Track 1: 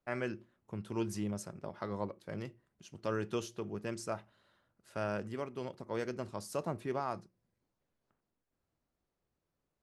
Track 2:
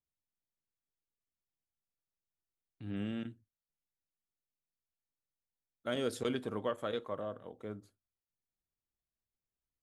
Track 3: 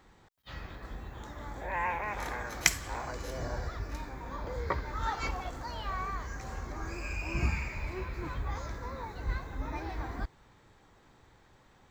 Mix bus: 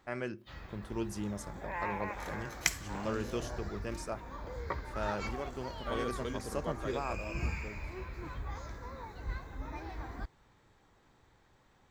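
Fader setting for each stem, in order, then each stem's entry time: -1.0 dB, -5.0 dB, -5.0 dB; 0.00 s, 0.00 s, 0.00 s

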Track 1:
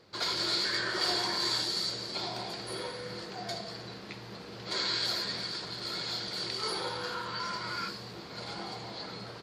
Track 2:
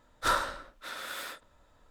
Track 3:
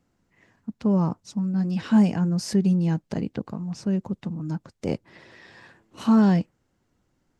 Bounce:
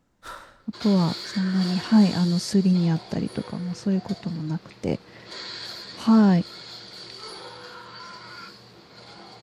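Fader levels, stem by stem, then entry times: -5.0 dB, -12.5 dB, +1.0 dB; 0.60 s, 0.00 s, 0.00 s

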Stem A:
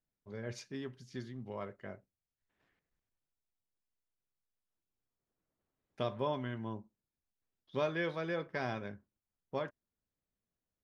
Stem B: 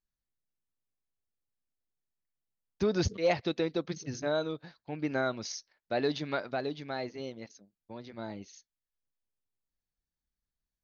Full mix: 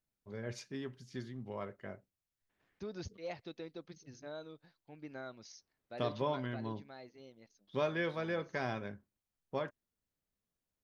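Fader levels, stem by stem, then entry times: 0.0 dB, -15.5 dB; 0.00 s, 0.00 s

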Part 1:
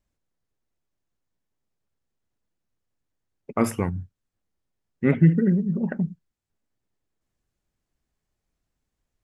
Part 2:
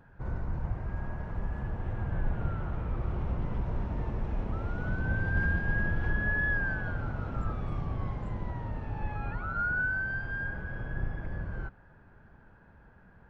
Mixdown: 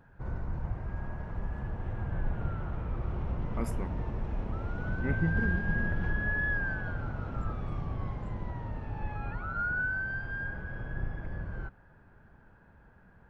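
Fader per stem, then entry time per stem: -14.5 dB, -1.5 dB; 0.00 s, 0.00 s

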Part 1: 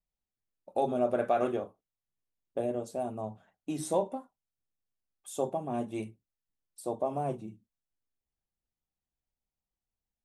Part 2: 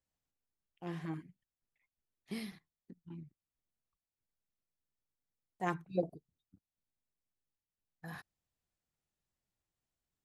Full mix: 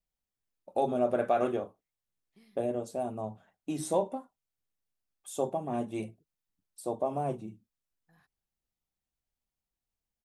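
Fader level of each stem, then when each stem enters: +0.5 dB, -20.0 dB; 0.00 s, 0.05 s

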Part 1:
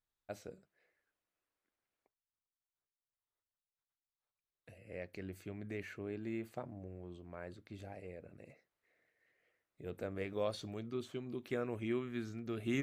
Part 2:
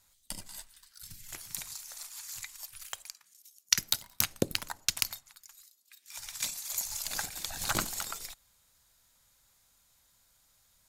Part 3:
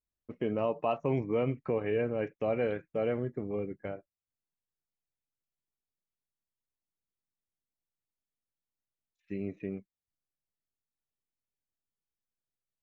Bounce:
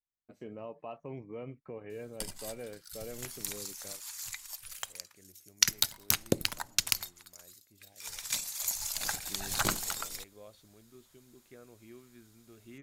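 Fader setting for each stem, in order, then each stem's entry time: -15.5 dB, +1.0 dB, -13.0 dB; 0.00 s, 1.90 s, 0.00 s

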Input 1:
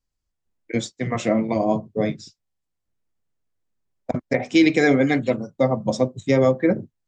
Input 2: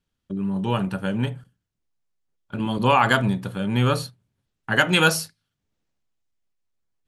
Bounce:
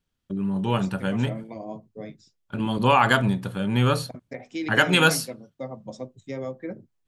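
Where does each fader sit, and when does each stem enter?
-15.5 dB, -0.5 dB; 0.00 s, 0.00 s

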